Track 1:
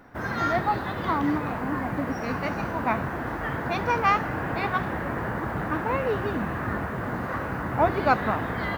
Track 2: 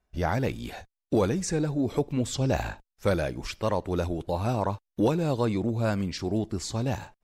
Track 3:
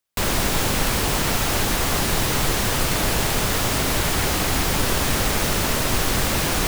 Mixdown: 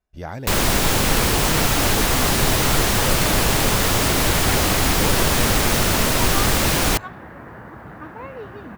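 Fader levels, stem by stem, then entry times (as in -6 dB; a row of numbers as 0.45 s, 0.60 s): -9.0 dB, -5.0 dB, +3.0 dB; 2.30 s, 0.00 s, 0.30 s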